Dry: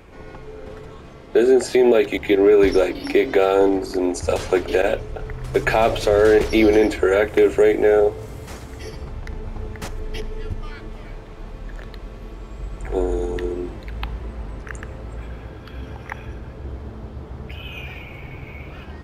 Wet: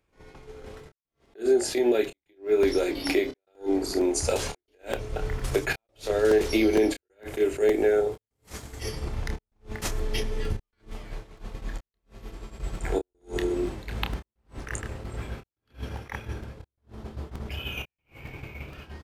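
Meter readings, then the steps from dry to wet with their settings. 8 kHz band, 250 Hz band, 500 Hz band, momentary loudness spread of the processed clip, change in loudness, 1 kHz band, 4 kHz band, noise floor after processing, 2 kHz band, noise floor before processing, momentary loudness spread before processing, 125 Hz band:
+1.5 dB, −7.0 dB, −8.5 dB, 21 LU, −10.0 dB, −11.0 dB, −3.0 dB, below −85 dBFS, −8.0 dB, −38 dBFS, 21 LU, −5.0 dB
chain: dynamic equaliser 340 Hz, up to +4 dB, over −24 dBFS, Q 1.4
downward expander −26 dBFS
downward compressor 3 to 1, threshold −30 dBFS, peak gain reduction 16.5 dB
gate pattern "xxxxxxxxxxx..xx" 186 BPM −60 dB
high-shelf EQ 3,500 Hz +9.5 dB
double-tracking delay 28 ms −8 dB
downsampling to 32,000 Hz
regular buffer underruns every 0.46 s, samples 128, repeat, from 0:00.79
level that may rise only so fast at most 260 dB per second
level +4 dB

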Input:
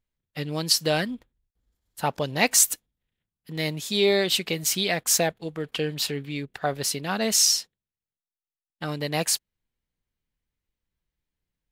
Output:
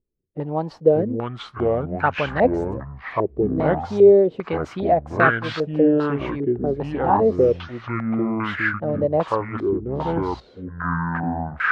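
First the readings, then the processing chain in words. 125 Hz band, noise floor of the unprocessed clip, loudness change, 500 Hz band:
+7.5 dB, below −85 dBFS, +2.5 dB, +10.5 dB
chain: delay with pitch and tempo change per echo 455 ms, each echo −5 semitones, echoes 3
low-pass on a step sequencer 2.5 Hz 390–1,500 Hz
level +2 dB

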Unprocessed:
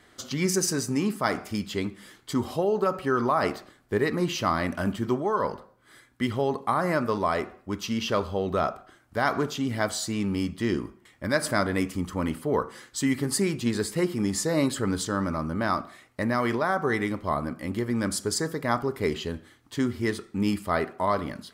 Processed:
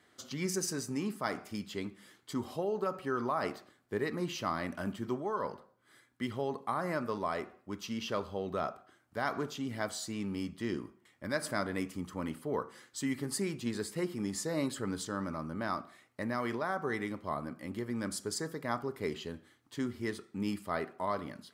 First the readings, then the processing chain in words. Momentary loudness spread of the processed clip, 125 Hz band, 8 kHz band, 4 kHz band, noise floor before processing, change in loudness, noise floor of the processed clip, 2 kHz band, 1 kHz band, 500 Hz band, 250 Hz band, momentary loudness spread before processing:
7 LU, −10.5 dB, −9.0 dB, −9.0 dB, −59 dBFS, −9.0 dB, −68 dBFS, −9.0 dB, −9.0 dB, −9.0 dB, −9.0 dB, 7 LU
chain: high-pass filter 100 Hz
level −9 dB

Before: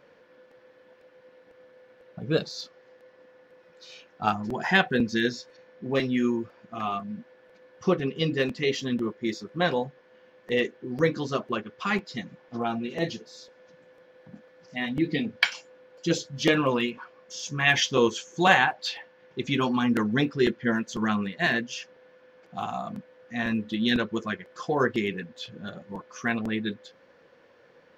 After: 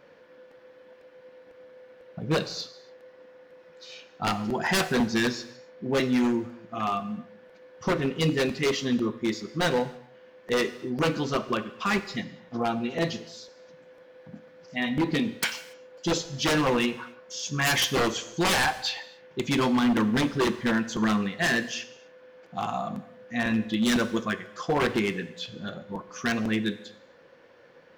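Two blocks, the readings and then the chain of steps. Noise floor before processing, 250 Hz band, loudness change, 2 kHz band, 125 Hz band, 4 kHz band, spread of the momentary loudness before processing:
−58 dBFS, +1.0 dB, 0.0 dB, −1.5 dB, +1.0 dB, +1.0 dB, 16 LU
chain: wave folding −20 dBFS
reverb whose tail is shaped and stops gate 310 ms falling, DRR 11 dB
level +2 dB

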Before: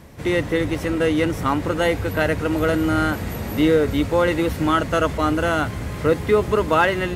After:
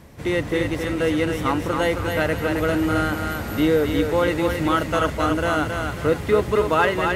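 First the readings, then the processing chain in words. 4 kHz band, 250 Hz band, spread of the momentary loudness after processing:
−0.5 dB, −1.5 dB, 5 LU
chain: feedback echo with a high-pass in the loop 269 ms, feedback 39%, high-pass 420 Hz, level −4 dB
level −2 dB

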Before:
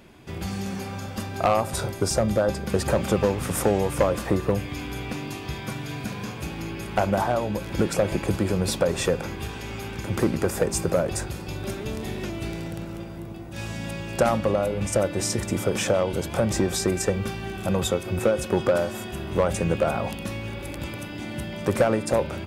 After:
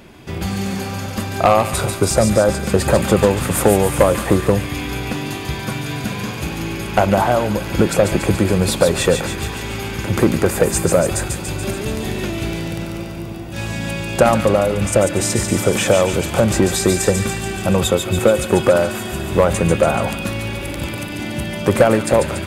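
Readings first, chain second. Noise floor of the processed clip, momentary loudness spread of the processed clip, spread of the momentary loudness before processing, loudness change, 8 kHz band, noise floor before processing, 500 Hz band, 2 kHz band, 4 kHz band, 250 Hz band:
−27 dBFS, 10 LU, 11 LU, +8.0 dB, +9.0 dB, −36 dBFS, +8.0 dB, +9.0 dB, +8.5 dB, +8.0 dB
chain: dynamic equaliser 5,500 Hz, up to −7 dB, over −52 dBFS, Q 4.3
on a send: delay with a high-pass on its return 143 ms, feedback 65%, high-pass 1,900 Hz, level −4.5 dB
on the sum: level +8 dB

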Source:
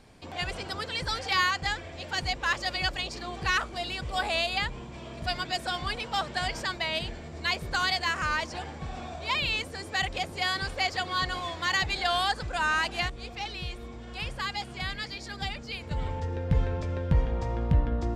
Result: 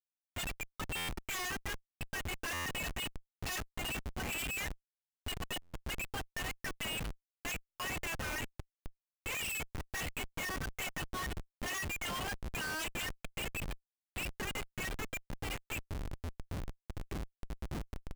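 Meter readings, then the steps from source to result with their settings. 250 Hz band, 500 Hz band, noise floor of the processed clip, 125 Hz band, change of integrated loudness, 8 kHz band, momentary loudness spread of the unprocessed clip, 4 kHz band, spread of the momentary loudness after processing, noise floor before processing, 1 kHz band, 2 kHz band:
−8.0 dB, −11.0 dB, below −85 dBFS, −11.5 dB, −10.0 dB, +0.5 dB, 10 LU, −11.5 dB, 9 LU, −43 dBFS, −14.5 dB, −10.0 dB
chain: comb filter 3.8 ms, depth 59%
reverb reduction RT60 2 s
high-frequency loss of the air 110 metres
flanger 0.14 Hz, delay 6.2 ms, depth 7.5 ms, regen −7%
drawn EQ curve 170 Hz 0 dB, 290 Hz −26 dB, 510 Hz −23 dB, 2,800 Hz +13 dB, 4,100 Hz −26 dB, 9,300 Hz −9 dB
wave folding −26.5 dBFS
notch filter 1,400 Hz, Q 9
repeating echo 384 ms, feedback 25%, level −13 dB
comparator with hysteresis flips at −34 dBFS
buffer that repeats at 0:00.96/0:02.53/0:05.61/0:07.67, samples 512, times 10
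level −1.5 dB

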